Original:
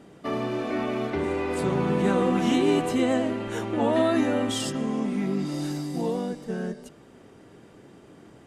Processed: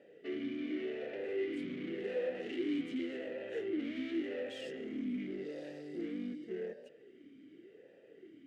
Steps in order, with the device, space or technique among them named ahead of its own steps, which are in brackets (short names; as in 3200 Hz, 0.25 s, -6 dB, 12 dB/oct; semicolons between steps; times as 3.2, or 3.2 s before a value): talk box (tube stage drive 32 dB, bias 0.6; vowel sweep e-i 0.88 Hz); gain +5.5 dB